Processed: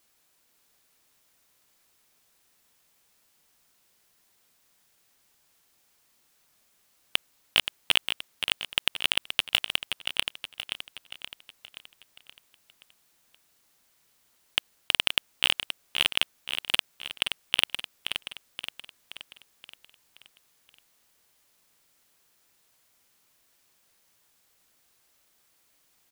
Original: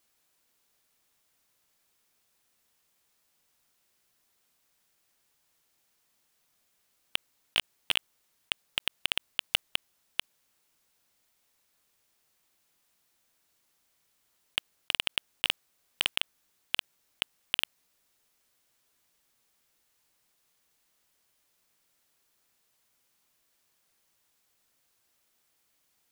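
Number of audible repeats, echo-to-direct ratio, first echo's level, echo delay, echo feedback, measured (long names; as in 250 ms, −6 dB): 5, −6.0 dB, −7.5 dB, 525 ms, 51%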